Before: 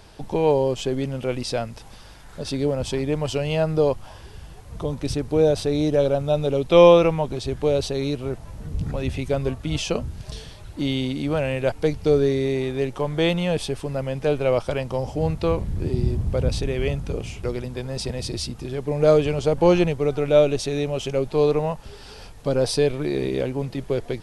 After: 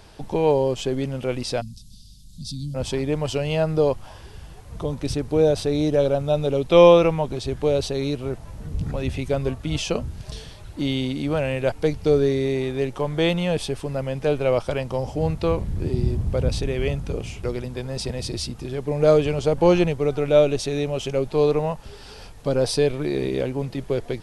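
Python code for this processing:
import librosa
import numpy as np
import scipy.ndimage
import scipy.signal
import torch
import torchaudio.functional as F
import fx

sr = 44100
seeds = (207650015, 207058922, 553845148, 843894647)

y = fx.ellip_bandstop(x, sr, low_hz=210.0, high_hz=4000.0, order=3, stop_db=40, at=(1.6, 2.74), fade=0.02)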